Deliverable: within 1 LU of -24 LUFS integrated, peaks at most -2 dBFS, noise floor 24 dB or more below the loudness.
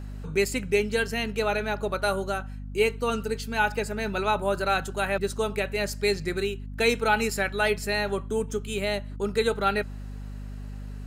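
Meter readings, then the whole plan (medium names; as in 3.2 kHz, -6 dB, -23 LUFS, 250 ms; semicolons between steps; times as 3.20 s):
hum 50 Hz; highest harmonic 250 Hz; hum level -34 dBFS; loudness -27.0 LUFS; peak level -9.0 dBFS; loudness target -24.0 LUFS
-> de-hum 50 Hz, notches 5; trim +3 dB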